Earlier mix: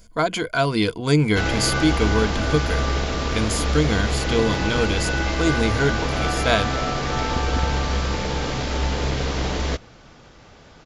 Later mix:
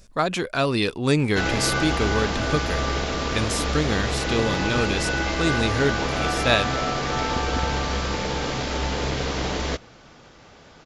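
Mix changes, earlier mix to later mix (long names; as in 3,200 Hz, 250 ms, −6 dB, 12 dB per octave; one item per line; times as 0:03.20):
speech: remove EQ curve with evenly spaced ripples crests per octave 1.8, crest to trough 11 dB
background: add low-shelf EQ 110 Hz −7 dB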